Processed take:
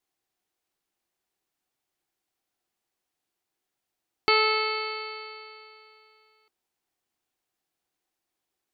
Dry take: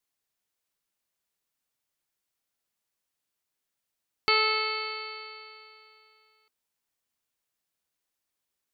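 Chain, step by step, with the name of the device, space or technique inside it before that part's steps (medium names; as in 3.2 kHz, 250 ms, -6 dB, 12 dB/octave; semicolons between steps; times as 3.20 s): inside a helmet (treble shelf 5.7 kHz -5 dB; small resonant body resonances 350/750 Hz, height 9 dB, ringing for 35 ms); trim +2 dB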